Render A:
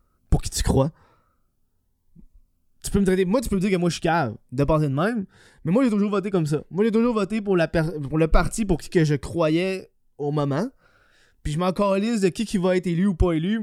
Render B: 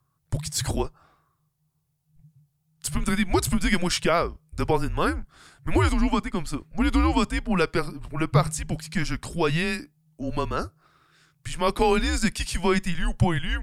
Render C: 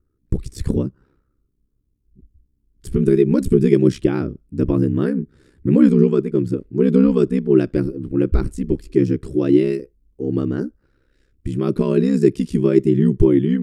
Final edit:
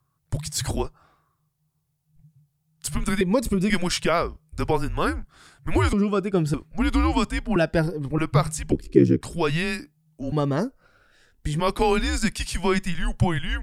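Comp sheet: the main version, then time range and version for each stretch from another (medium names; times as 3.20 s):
B
3.21–3.70 s: from A
5.93–6.54 s: from A
7.56–8.18 s: from A
8.72–9.21 s: from C
10.32–11.60 s: from A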